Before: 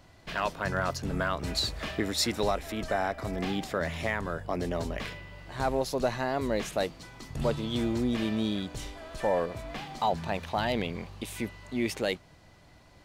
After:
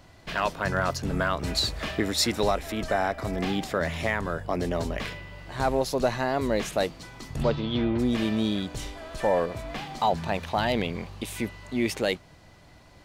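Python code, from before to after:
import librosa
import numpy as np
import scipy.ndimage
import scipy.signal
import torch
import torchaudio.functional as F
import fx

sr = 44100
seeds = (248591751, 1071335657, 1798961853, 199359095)

y = fx.lowpass(x, sr, hz=fx.line((7.42, 6000.0), (7.98, 3000.0)), slope=24, at=(7.42, 7.98), fade=0.02)
y = y * librosa.db_to_amplitude(3.5)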